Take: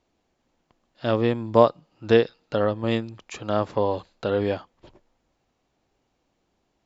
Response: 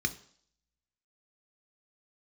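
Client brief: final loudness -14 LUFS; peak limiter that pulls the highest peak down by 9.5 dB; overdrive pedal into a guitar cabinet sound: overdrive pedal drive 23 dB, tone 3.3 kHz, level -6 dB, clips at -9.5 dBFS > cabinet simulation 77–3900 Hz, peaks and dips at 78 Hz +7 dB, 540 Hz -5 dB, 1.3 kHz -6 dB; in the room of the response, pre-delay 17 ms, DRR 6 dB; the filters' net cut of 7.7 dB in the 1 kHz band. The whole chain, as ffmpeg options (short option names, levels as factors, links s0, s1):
-filter_complex "[0:a]equalizer=f=1000:t=o:g=-8,alimiter=limit=0.211:level=0:latency=1,asplit=2[s0][s1];[1:a]atrim=start_sample=2205,adelay=17[s2];[s1][s2]afir=irnorm=-1:irlink=0,volume=0.266[s3];[s0][s3]amix=inputs=2:normalize=0,asplit=2[s4][s5];[s5]highpass=f=720:p=1,volume=14.1,asoftclip=type=tanh:threshold=0.335[s6];[s4][s6]amix=inputs=2:normalize=0,lowpass=f=3300:p=1,volume=0.501,highpass=77,equalizer=f=78:t=q:w=4:g=7,equalizer=f=540:t=q:w=4:g=-5,equalizer=f=1300:t=q:w=4:g=-6,lowpass=f=3900:w=0.5412,lowpass=f=3900:w=1.3066,volume=2.99"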